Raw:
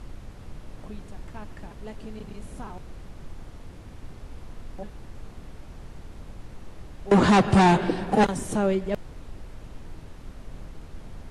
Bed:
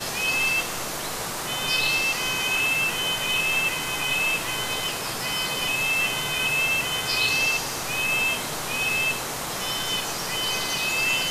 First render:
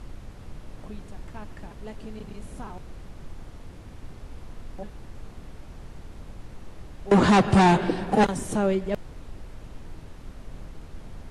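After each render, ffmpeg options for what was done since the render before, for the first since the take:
-af anull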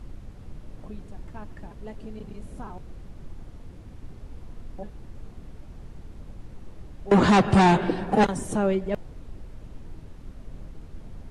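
-af "afftdn=nr=6:nf=-45"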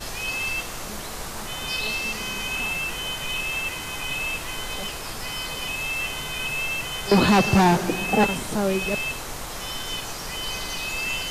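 -filter_complex "[1:a]volume=-4.5dB[a];[0:a][a]amix=inputs=2:normalize=0"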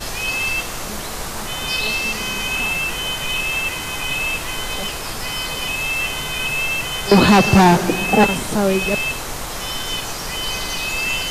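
-af "volume=6dB,alimiter=limit=-3dB:level=0:latency=1"

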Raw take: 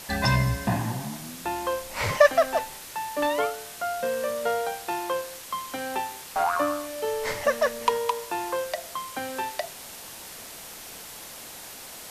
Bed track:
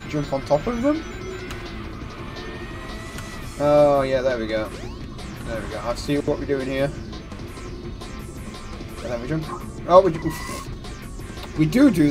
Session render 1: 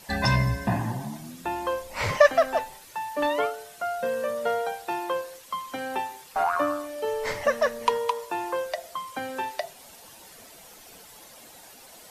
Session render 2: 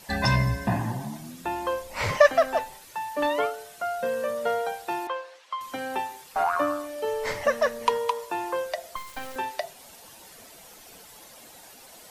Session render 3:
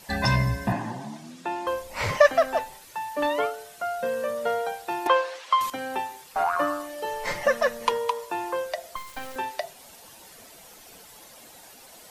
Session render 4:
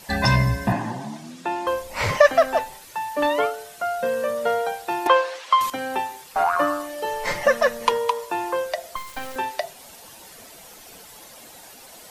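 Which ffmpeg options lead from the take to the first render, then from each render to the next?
-af "afftdn=nr=10:nf=-42"
-filter_complex "[0:a]asettb=1/sr,asplit=3[a][b][c];[a]atrim=end=5.074[d];[b]atrim=start=5.07:end=5.61,asetpts=PTS-STARTPTS,afade=t=in:d=0.004:c=qsin,afade=t=out:st=0.536:d=0.004:c=qsin,highpass=680,lowpass=3.8k[e];[c]atrim=start=5.606[f];[d][e]acrossfade=d=0.004:c1=hsin:c2=qsin[g];[g][f]acrossfade=d=0.004:c1=qsin:c2=hsin,asettb=1/sr,asplit=3[h][i][j];[h]atrim=end=8.964[k];[i]atrim=start=8.96:end=9.36,asetpts=PTS-STARTPTS,afade=t=in:d=0.004:c=qsin,afade=t=out:st=0.396:d=0.004:c=qsin,acrusher=bits=4:dc=4:mix=0:aa=0.000001[l];[j]atrim=start=9.356[m];[k][l]acrossfade=d=0.004:c1=hsin:c2=qsin[n];[n][m]acrossfade=d=0.004:c1=qsin:c2=hsin"
-filter_complex "[0:a]asettb=1/sr,asplit=3[a][b][c];[a]atrim=end=0.724[d];[b]atrim=start=0.72:end=1.67,asetpts=PTS-STARTPTS,afade=t=in:d=0.004:c=qsin,afade=t=out:st=0.946:d=0.004:c=qsin,highpass=190,lowpass=7.3k[e];[c]atrim=start=1.666[f];[d][e]acrossfade=d=0.004:c1=hsin:c2=qsin[g];[g][f]acrossfade=d=0.004:c1=qsin:c2=hsin,asettb=1/sr,asplit=3[h][i][j];[h]atrim=end=6.584[k];[i]atrim=start=6.58:end=7.92,asetpts=PTS-STARTPTS,afade=t=in:d=0.004:c=qsin,afade=t=out:st=1.336:d=0.004:c=qsin,aecho=1:1:5.7:0.65,atrim=end_sample=59094[l];[j]atrim=start=7.916[m];[k][l]acrossfade=d=0.004:c1=hsin:c2=qsin[n];[n][m]acrossfade=d=0.004:c1=qsin:c2=hsin,asplit=3[o][p][q];[o]atrim=end=5.062[r];[p]atrim=start=5.058:end=5.702,asetpts=PTS-STARTPTS,volume=11.5dB[s];[q]atrim=start=5.698[t];[r][s]acrossfade=d=0.004:c1=hsin:c2=hsin[u];[u][t]acrossfade=d=0.004:c1=hsin:c2=hsin"
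-af "volume=4dB,alimiter=limit=-3dB:level=0:latency=1"

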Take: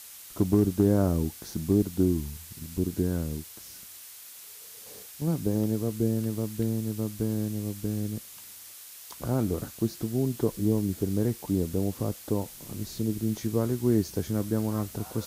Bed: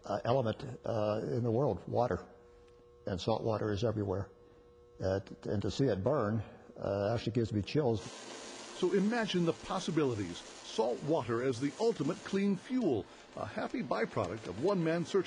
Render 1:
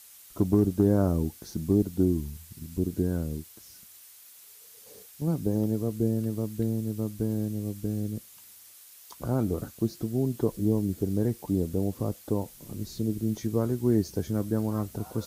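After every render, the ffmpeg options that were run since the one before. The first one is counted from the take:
-af "afftdn=nr=7:nf=-46"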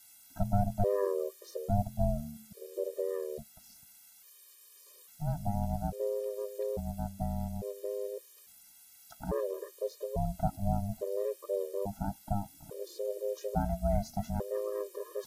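-af "aeval=exprs='val(0)*sin(2*PI*300*n/s)':c=same,afftfilt=real='re*gt(sin(2*PI*0.59*pts/sr)*(1-2*mod(floor(b*sr/1024/320),2)),0)':imag='im*gt(sin(2*PI*0.59*pts/sr)*(1-2*mod(floor(b*sr/1024/320),2)),0)':win_size=1024:overlap=0.75"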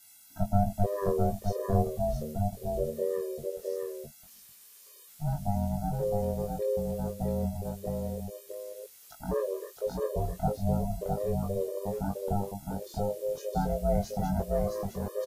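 -filter_complex "[0:a]asplit=2[a][b];[b]adelay=21,volume=-3dB[c];[a][c]amix=inputs=2:normalize=0,aecho=1:1:661:0.668"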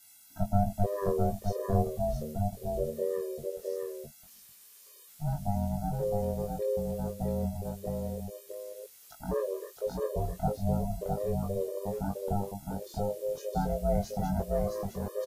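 -af "volume=-1dB"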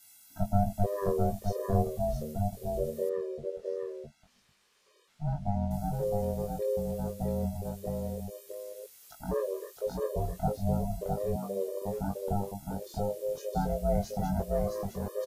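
-filter_complex "[0:a]asettb=1/sr,asplit=3[a][b][c];[a]atrim=end=3.094[d];[b]atrim=start=3.09:end=5.71,asetpts=PTS-STARTPTS,afade=t=in:d=0.004:c=qsin,afade=t=out:st=2.616:d=0.004:c=qsin,adynamicsmooth=sensitivity=3:basefreq=3.5k[e];[c]atrim=start=5.706[f];[d][e]acrossfade=d=0.004:c1=hsin:c2=qsin[g];[g][f]acrossfade=d=0.004:c1=qsin:c2=hsin,asettb=1/sr,asplit=3[h][i][j];[h]atrim=end=11.364[k];[i]atrim=start=11.36:end=11.82,asetpts=PTS-STARTPTS,afade=t=in:d=0.004:c=qsin,afade=t=out:st=0.456:d=0.004:c=qsin,highpass=f=190:w=0.5412,highpass=f=190:w=1.3066[l];[j]atrim=start=11.816[m];[k][l]acrossfade=d=0.004:c1=hsin:c2=qsin[n];[n][m]acrossfade=d=0.004:c1=qsin:c2=hsin"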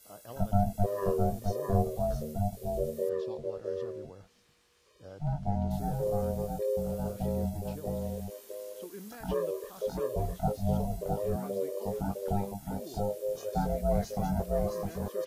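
-filter_complex "[1:a]volume=-15dB[a];[0:a][a]amix=inputs=2:normalize=0"

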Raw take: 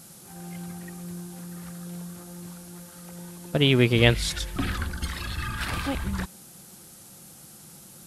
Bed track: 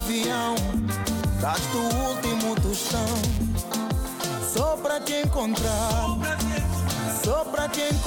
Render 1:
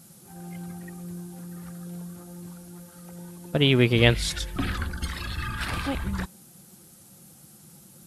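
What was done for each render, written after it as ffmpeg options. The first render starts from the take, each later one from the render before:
-af "afftdn=nr=6:nf=-48"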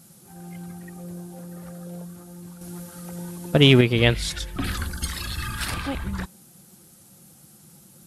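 -filter_complex "[0:a]asettb=1/sr,asplit=3[a][b][c];[a]atrim=end=0.964[d];[b]atrim=start=0.96:end=2.05,asetpts=PTS-STARTPTS,afade=t=in:d=0.004:c=qsin,afade=t=out:st=1.086:d=0.004:c=qsin,equalizer=f=570:w=2:g=11.5[e];[c]atrim=start=2.046[f];[d][e]acrossfade=d=0.004:c1=hsin:c2=qsin[g];[g][f]acrossfade=d=0.004:c1=qsin:c2=hsin,asettb=1/sr,asplit=3[h][i][j];[h]atrim=end=2.614[k];[i]atrim=start=2.61:end=3.81,asetpts=PTS-STARTPTS,afade=t=in:d=0.004:c=qsin,afade=t=out:st=1.196:d=0.004:c=qsin,acontrast=72[l];[j]atrim=start=3.806[m];[k][l]acrossfade=d=0.004:c1=hsin:c2=qsin[n];[n][m]acrossfade=d=0.004:c1=qsin:c2=hsin,asettb=1/sr,asplit=3[o][p][q];[o]atrim=end=4.644[r];[p]atrim=start=4.64:end=5.74,asetpts=PTS-STARTPTS,afade=t=in:d=0.004:c=qsin,afade=t=out:st=1.096:d=0.004:c=qsin,bass=f=250:g=1,treble=f=4k:g=10[s];[q]atrim=start=5.736[t];[r][s]acrossfade=d=0.004:c1=hsin:c2=qsin[u];[u][t]acrossfade=d=0.004:c1=qsin:c2=hsin"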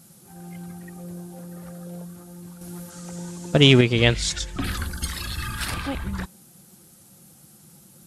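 -filter_complex "[0:a]asettb=1/sr,asplit=3[a][b][c];[a]atrim=end=2.904[d];[b]atrim=start=2.9:end=4.61,asetpts=PTS-STARTPTS,afade=t=in:d=0.004:c=qsin,afade=t=out:st=1.706:d=0.004:c=qsin,lowpass=f=7.1k:t=q:w=2.4[e];[c]atrim=start=4.606[f];[d][e]acrossfade=d=0.004:c1=hsin:c2=qsin[g];[g][f]acrossfade=d=0.004:c1=qsin:c2=hsin"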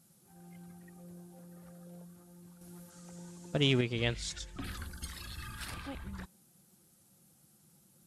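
-af "volume=-14dB"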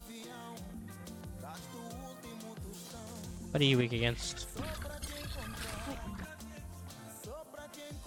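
-filter_complex "[1:a]volume=-22.5dB[a];[0:a][a]amix=inputs=2:normalize=0"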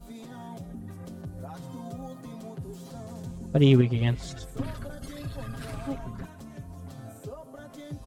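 -af "tiltshelf=f=970:g=7,aecho=1:1:7.4:0.89"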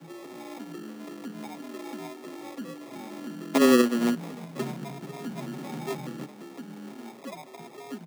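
-af "acrusher=samples=31:mix=1:aa=0.000001,afreqshift=120"

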